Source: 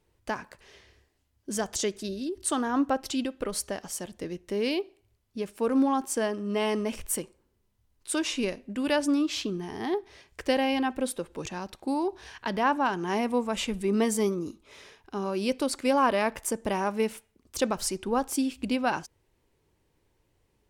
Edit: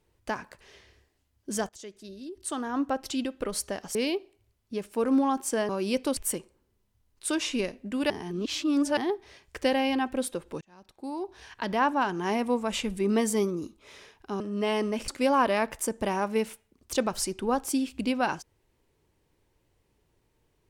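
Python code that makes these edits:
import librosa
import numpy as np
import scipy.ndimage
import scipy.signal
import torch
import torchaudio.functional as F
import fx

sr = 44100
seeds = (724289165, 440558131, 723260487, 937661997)

y = fx.edit(x, sr, fx.fade_in_from(start_s=1.69, length_s=1.66, floor_db=-20.5),
    fx.cut(start_s=3.95, length_s=0.64),
    fx.swap(start_s=6.33, length_s=0.68, other_s=15.24, other_length_s=0.48),
    fx.reverse_span(start_s=8.94, length_s=0.87),
    fx.fade_in_span(start_s=11.45, length_s=1.14), tone=tone)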